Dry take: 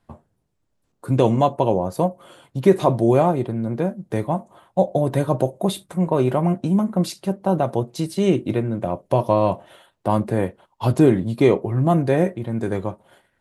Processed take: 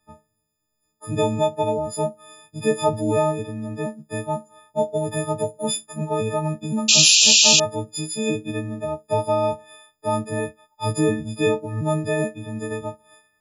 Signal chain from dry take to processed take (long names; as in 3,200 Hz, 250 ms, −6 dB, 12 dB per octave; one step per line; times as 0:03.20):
every partial snapped to a pitch grid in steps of 6 semitones
sound drawn into the spectrogram noise, 0:06.88–0:07.60, 2,400–7,500 Hz −8 dBFS
level −6 dB